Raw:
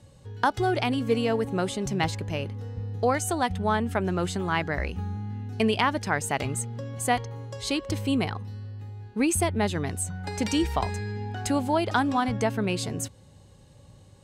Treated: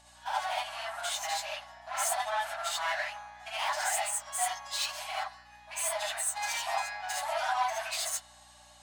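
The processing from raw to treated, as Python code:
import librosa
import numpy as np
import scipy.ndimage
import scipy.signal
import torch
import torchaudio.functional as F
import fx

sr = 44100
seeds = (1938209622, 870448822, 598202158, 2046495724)

p1 = fx.over_compress(x, sr, threshold_db=-30.0, ratio=-1.0)
p2 = x + (p1 * librosa.db_to_amplitude(3.0))
p3 = scipy.signal.sosfilt(scipy.signal.ellip(4, 1.0, 40, 12000.0, 'lowpass', fs=sr, output='sos'), p2)
p4 = 10.0 ** (-21.5 / 20.0) * np.tanh(p3 / 10.0 ** (-21.5 / 20.0))
p5 = p4 + fx.echo_bbd(p4, sr, ms=76, stages=1024, feedback_pct=63, wet_db=-17.5, dry=0)
p6 = fx.stretch_vocoder_free(p5, sr, factor=0.62)
p7 = fx.brickwall_highpass(p6, sr, low_hz=590.0)
p8 = fx.rev_gated(p7, sr, seeds[0], gate_ms=100, shape='rising', drr_db=-5.5)
p9 = fx.add_hum(p8, sr, base_hz=60, snr_db=31)
y = p9 * librosa.db_to_amplitude(-4.5)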